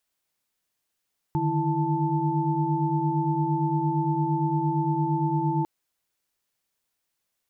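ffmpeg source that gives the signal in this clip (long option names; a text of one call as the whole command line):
ffmpeg -f lavfi -i "aevalsrc='0.0422*(sin(2*PI*146.83*t)+sin(2*PI*155.56*t)+sin(2*PI*329.63*t)+sin(2*PI*880*t))':duration=4.3:sample_rate=44100" out.wav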